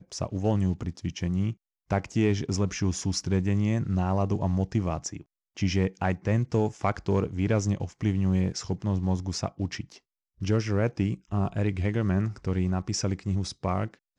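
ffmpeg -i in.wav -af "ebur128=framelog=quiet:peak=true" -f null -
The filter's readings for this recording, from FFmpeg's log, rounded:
Integrated loudness:
  I:         -28.2 LUFS
  Threshold: -38.4 LUFS
Loudness range:
  LRA:         2.0 LU
  Threshold: -48.3 LUFS
  LRA low:   -29.4 LUFS
  LRA high:  -27.3 LUFS
True peak:
  Peak:      -10.8 dBFS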